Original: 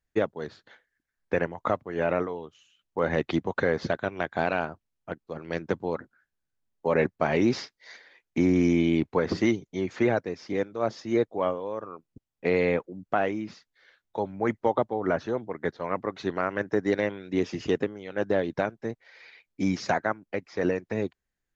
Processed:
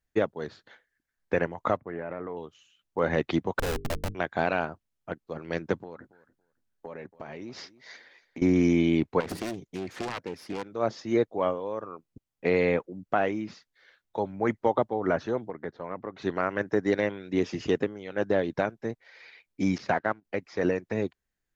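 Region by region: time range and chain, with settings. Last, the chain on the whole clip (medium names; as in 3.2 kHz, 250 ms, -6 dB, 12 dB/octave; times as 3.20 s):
1.77–2.37 s: Chebyshev low-pass 2.1 kHz, order 3 + compression 12:1, threshold -30 dBFS
3.59–4.15 s: Schmitt trigger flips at -27.5 dBFS + hum notches 50/100/150/200/250/300/350/400/450 Hz
5.81–8.42 s: compression 8:1, threshold -37 dBFS + feedback delay 281 ms, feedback 17%, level -19 dB
9.20–10.68 s: self-modulated delay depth 0.77 ms + compression 5:1, threshold -29 dBFS
15.50–16.22 s: treble shelf 2.9 kHz -11.5 dB + compression 2:1, threshold -34 dBFS
19.78–20.25 s: companding laws mixed up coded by A + gate -50 dBFS, range -12 dB + low-pass 3.7 kHz
whole clip: none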